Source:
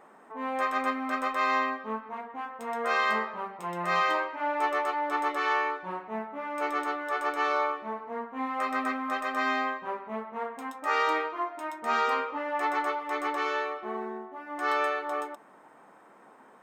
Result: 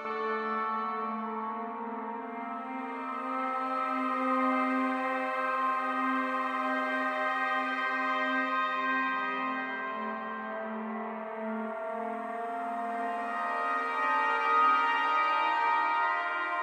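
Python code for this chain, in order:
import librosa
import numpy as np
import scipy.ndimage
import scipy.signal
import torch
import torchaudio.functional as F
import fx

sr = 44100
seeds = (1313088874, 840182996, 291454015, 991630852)

y = fx.paulstretch(x, sr, seeds[0], factor=4.5, window_s=1.0, from_s=7.7)
y = fx.rev_spring(y, sr, rt60_s=1.9, pass_ms=(50,), chirp_ms=50, drr_db=-8.5)
y = y * 10.0 ** (-9.0 / 20.0)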